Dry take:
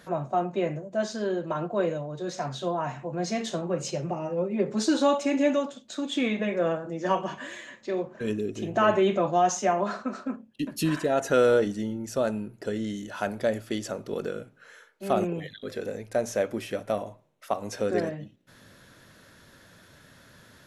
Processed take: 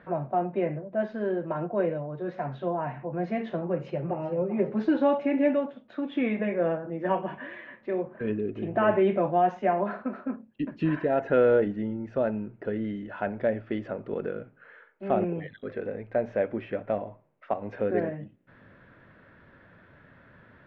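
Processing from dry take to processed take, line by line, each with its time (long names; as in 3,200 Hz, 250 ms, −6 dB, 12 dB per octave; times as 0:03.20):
0:03.63–0:04.31: delay throw 390 ms, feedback 35%, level −12.5 dB
whole clip: low-pass filter 2,300 Hz 24 dB per octave; dynamic equaliser 1,200 Hz, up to −7 dB, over −47 dBFS, Q 3.6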